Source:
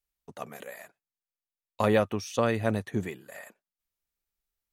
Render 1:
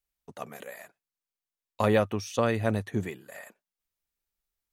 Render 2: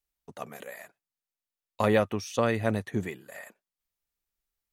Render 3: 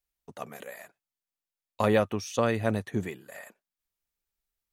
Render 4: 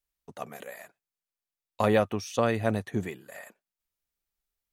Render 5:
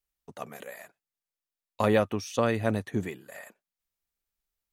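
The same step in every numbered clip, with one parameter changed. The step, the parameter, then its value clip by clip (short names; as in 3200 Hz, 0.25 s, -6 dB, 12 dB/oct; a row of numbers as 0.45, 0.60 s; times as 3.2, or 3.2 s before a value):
dynamic EQ, frequency: 100, 2000, 6600, 720, 280 Hz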